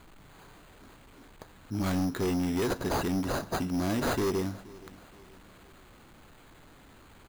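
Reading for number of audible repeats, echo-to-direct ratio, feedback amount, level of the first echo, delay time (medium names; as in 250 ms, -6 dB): 2, -20.0 dB, 44%, -21.0 dB, 475 ms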